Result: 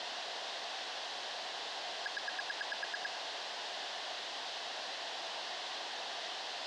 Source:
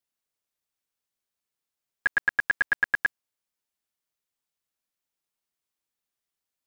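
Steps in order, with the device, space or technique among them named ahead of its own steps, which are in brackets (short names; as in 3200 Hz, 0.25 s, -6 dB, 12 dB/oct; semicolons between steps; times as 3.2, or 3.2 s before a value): home computer beeper (infinite clipping; speaker cabinet 580–4300 Hz, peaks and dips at 710 Hz +7 dB, 1300 Hz -8 dB, 2300 Hz -9 dB); gain +3 dB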